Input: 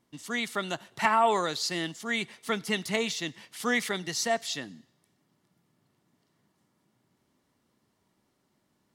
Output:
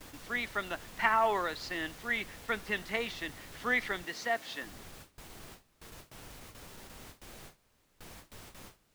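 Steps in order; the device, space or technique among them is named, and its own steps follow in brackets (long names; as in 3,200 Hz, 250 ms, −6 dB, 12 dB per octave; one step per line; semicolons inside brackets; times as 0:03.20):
horn gramophone (band-pass filter 250–3,400 Hz; parametric band 1,700 Hz +6.5 dB 0.77 octaves; tape wow and flutter; pink noise bed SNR 12 dB)
0:04.04–0:04.63: high-pass filter 180 Hz 12 dB per octave
noise gate with hold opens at −33 dBFS
level −5.5 dB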